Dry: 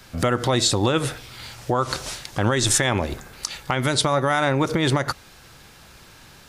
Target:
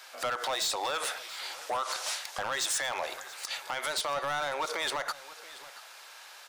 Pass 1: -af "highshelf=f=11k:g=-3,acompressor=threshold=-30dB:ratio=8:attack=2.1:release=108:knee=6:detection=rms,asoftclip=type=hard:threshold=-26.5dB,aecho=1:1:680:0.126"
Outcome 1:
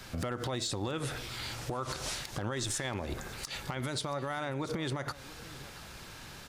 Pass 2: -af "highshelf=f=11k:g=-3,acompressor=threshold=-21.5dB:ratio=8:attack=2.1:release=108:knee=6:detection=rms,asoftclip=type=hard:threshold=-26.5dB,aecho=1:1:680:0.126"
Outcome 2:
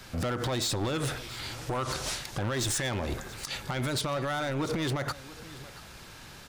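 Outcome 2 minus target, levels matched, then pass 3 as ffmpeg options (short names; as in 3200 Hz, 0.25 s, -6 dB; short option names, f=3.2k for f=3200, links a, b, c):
500 Hz band +2.0 dB
-af "highpass=f=610:w=0.5412,highpass=f=610:w=1.3066,highshelf=f=11k:g=-3,acompressor=threshold=-21.5dB:ratio=8:attack=2.1:release=108:knee=6:detection=rms,asoftclip=type=hard:threshold=-26.5dB,aecho=1:1:680:0.126"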